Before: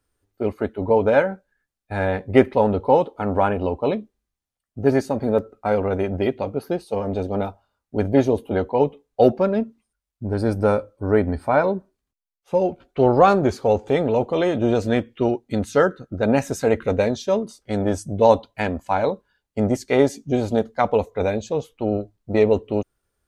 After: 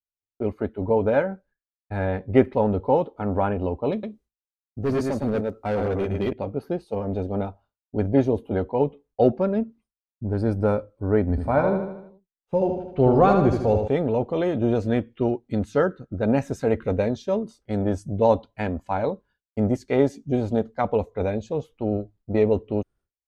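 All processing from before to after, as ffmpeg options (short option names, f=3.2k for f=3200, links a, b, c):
-filter_complex "[0:a]asettb=1/sr,asplit=3[a][b][c];[a]atrim=end=3.924[d];[b]atrim=start=3.92:end=6.33,asetpts=PTS-STARTPTS,afade=t=in:d=0.004:c=qsin,afade=t=out:st=2.406:d=0.004:c=qsin,highshelf=f=3.4k:g=10,aecho=1:1:111:0.562,atrim=end_sample=106281,asoftclip=type=hard:threshold=-16.5dB[e];[c]atrim=start=6.326[f];[d][e]acrossfade=d=0.004:c1=hsin:c2=qsin[g];[g][f]acrossfade=d=0.004:c1=qsin:c2=hsin,asettb=1/sr,asplit=3[h][i][j];[h]atrim=end=11.304[k];[i]atrim=start=11.3:end=13.88,asetpts=PTS-STARTPTS,afade=t=in:d=0.004:c=qsin,afade=t=out:st=2.576:d=0.004:c=qsin,lowshelf=f=120:g=6.5,aecho=1:1:77|154|231|308|385|462:0.501|0.261|0.136|0.0705|0.0366|0.0191,atrim=end_sample=113778[l];[j]atrim=start=13.876[m];[k][l]acrossfade=d=0.004:c1=hsin:c2=qsin[n];[n][m]acrossfade=d=0.004:c1=qsin:c2=hsin,aemphasis=mode=reproduction:type=cd,agate=range=-33dB:threshold=-46dB:ratio=3:detection=peak,lowshelf=f=350:g=6,volume=-6dB"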